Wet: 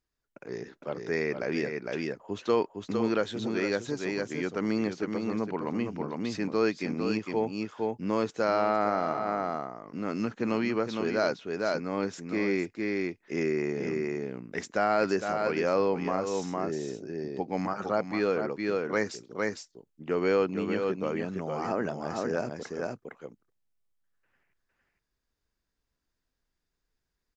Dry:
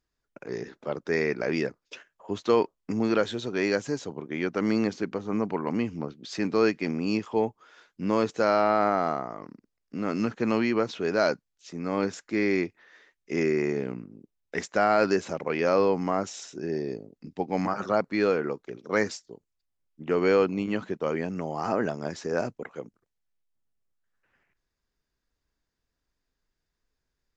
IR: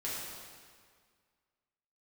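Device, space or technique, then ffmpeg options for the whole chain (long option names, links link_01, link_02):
ducked delay: -filter_complex "[0:a]asplit=3[link_01][link_02][link_03];[link_02]adelay=458,volume=-2dB[link_04];[link_03]apad=whole_len=1226796[link_05];[link_04][link_05]sidechaincompress=threshold=-26dB:ratio=10:attack=5.2:release=285[link_06];[link_01][link_06]amix=inputs=2:normalize=0,volume=-3.5dB"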